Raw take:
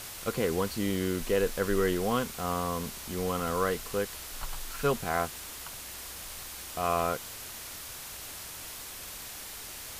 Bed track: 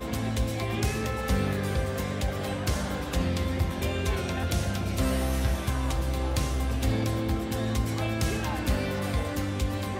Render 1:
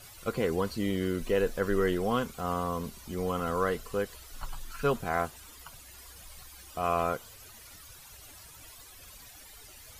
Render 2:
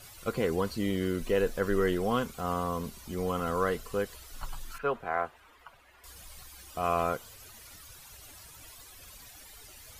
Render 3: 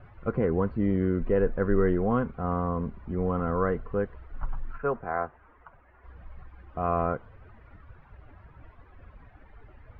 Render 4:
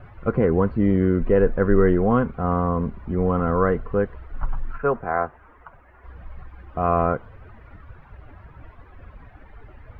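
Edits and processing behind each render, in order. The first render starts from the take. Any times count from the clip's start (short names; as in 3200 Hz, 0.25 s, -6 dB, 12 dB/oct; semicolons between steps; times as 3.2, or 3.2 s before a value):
denoiser 14 dB, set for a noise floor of -43 dBFS
4.78–6.04 three-band isolator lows -12 dB, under 390 Hz, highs -21 dB, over 2700 Hz
LPF 1800 Hz 24 dB/oct; low shelf 290 Hz +8.5 dB
gain +6.5 dB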